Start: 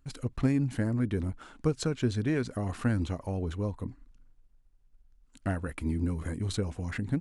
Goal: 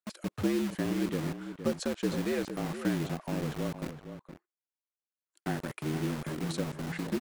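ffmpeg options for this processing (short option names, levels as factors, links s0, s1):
-filter_complex "[0:a]afreqshift=70,acrossover=split=460[s0][s1];[s0]acrusher=bits=5:mix=0:aa=0.000001[s2];[s1]agate=range=0.141:threshold=0.001:ratio=16:detection=peak[s3];[s2][s3]amix=inputs=2:normalize=0,asplit=2[s4][s5];[s5]adelay=466.5,volume=0.316,highshelf=f=4000:g=-10.5[s6];[s4][s6]amix=inputs=2:normalize=0,volume=0.708"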